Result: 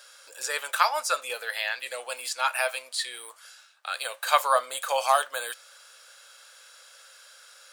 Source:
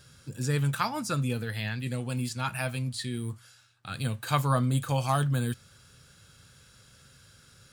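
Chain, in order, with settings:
elliptic high-pass filter 550 Hz, stop band 70 dB
level +7.5 dB

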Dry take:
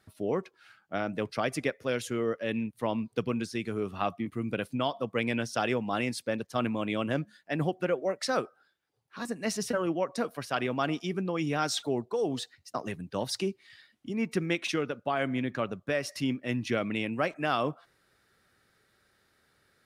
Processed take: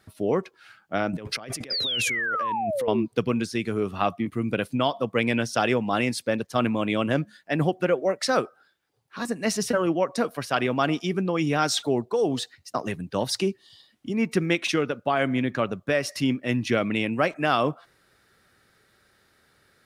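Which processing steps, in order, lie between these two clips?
0:13.57–0:13.89: healed spectral selection 1,200–2,800 Hz after
0:01.13–0:02.88: compressor whose output falls as the input rises −42 dBFS, ratio −1
0:01.70–0:03.06: sound drawn into the spectrogram fall 310–5,100 Hz −33 dBFS
level +6 dB

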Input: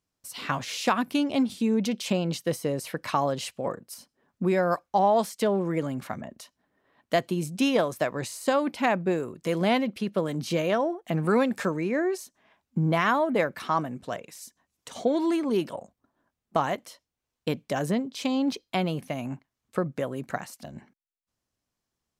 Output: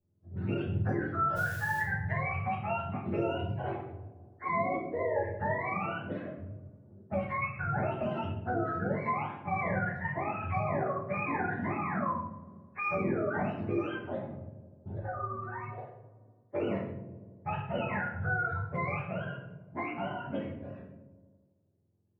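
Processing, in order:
frequency axis turned over on the octave scale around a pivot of 620 Hz
low-pass that shuts in the quiet parts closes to 490 Hz, open at −22 dBFS
brickwall limiter −20.5 dBFS, peak gain reduction 10.5 dB
0:01.35–0:01.80: background noise white −46 dBFS
0:14.99–0:15.78: stiff-string resonator 110 Hz, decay 0.25 s, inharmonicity 0.03
delay with a low-pass on its return 83 ms, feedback 66%, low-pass 590 Hz, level −13.5 dB
rectangular room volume 110 cubic metres, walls mixed, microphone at 1.4 metres
multiband upward and downward compressor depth 40%
level −8.5 dB

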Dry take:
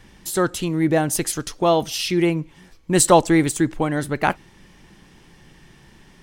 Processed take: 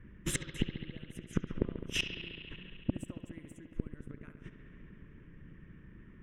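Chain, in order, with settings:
noise gate −38 dBFS, range −19 dB
low-pass that shuts in the quiet parts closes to 1,700 Hz, open at −16 dBFS
0:00.56–0:03.01: bass and treble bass +3 dB, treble −7 dB
harmonic and percussive parts rebalanced percussive +6 dB
low-shelf EQ 410 Hz +5.5 dB
downward compressor 2.5 to 1, threshold −31 dBFS, peak gain reduction 19.5 dB
gate with flip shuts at −22 dBFS, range −34 dB
phaser with its sweep stopped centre 1,900 Hz, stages 4
tube saturation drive 25 dB, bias 0.5
bucket-brigade delay 69 ms, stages 2,048, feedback 85%, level −10.5 dB
level +10.5 dB

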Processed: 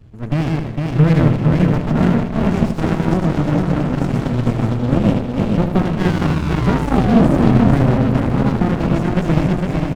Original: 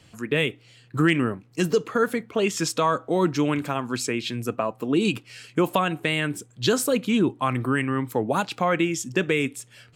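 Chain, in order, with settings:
feedback delay that plays each chunk backwards 228 ms, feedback 74%, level −1 dB
RIAA equalisation playback
reversed playback
upward compression, threshold −28 dBFS
reversed playback
sound drawn into the spectrogram fall, 0:05.99–0:07.98, 360–1,700 Hz −17 dBFS
on a send: repeating echo 78 ms, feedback 46%, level −7 dB
on the sum: windowed peak hold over 65 samples

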